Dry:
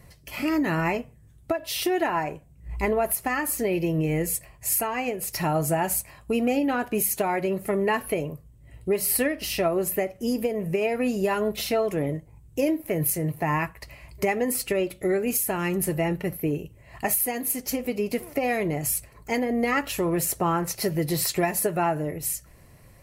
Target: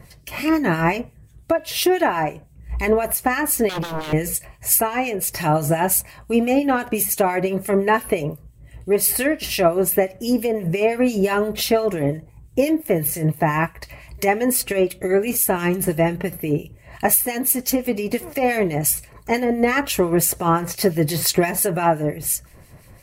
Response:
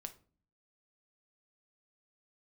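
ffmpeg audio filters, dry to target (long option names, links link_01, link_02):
-filter_complex "[0:a]asettb=1/sr,asplit=3[link_01][link_02][link_03];[link_01]atrim=end=3.694[link_04];[link_02]atrim=start=3.69:end=4.13,asetpts=PTS-STARTPTS,afade=type=in:duration=0.004:curve=qsin,afade=type=out:start_time=0.436:duration=0.004:curve=qsin,aeval=exprs='0.0422*(abs(mod(val(0)/0.0422+3,4)-2)-1)':channel_layout=same[link_05];[link_03]atrim=start=4.126[link_06];[link_04][link_05]acrossfade=duration=0.004:curve1=hsin:curve2=qsin[link_07];[link_07][link_06]acrossfade=duration=0.004:curve1=qsin:curve2=hsin,acrossover=split=2000[link_08][link_09];[link_08]aeval=exprs='val(0)*(1-0.7/2+0.7/2*cos(2*PI*5.8*n/s))':channel_layout=same[link_10];[link_09]aeval=exprs='val(0)*(1-0.7/2-0.7/2*cos(2*PI*5.8*n/s))':channel_layout=same[link_11];[link_10][link_11]amix=inputs=2:normalize=0,volume=9dB"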